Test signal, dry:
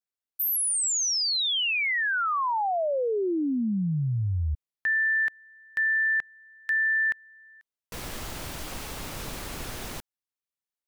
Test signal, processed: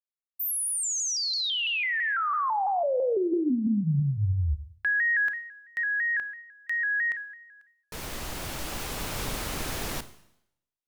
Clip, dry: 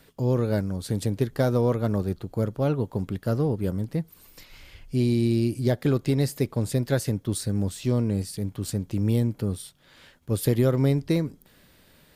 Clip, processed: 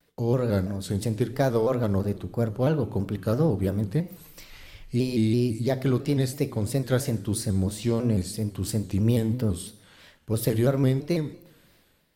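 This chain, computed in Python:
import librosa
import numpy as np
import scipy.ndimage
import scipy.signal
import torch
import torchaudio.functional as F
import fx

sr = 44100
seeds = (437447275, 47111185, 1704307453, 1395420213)

y = fx.gate_hold(x, sr, open_db=-44.0, close_db=-53.0, hold_ms=71.0, range_db=-11, attack_ms=0.22, release_ms=319.0)
y = fx.hum_notches(y, sr, base_hz=60, count=6)
y = fx.rider(y, sr, range_db=4, speed_s=2.0)
y = fx.rev_schroeder(y, sr, rt60_s=0.77, comb_ms=26, drr_db=13.0)
y = fx.vibrato_shape(y, sr, shape='square', rate_hz=3.0, depth_cents=100.0)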